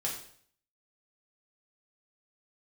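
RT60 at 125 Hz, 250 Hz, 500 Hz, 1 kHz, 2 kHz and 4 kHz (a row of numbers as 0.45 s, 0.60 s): 0.65 s, 0.60 s, 0.60 s, 0.55 s, 0.55 s, 0.55 s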